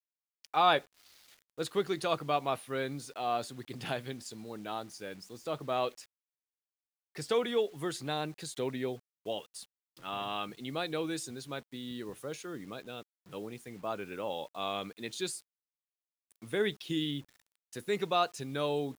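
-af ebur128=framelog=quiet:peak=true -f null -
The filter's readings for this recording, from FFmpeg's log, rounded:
Integrated loudness:
  I:         -35.2 LUFS
  Threshold: -45.7 LUFS
Loudness range:
  LRA:         5.6 LU
  Threshold: -57.1 LUFS
  LRA low:   -40.2 LUFS
  LRA high:  -34.6 LUFS
True peak:
  Peak:      -12.5 dBFS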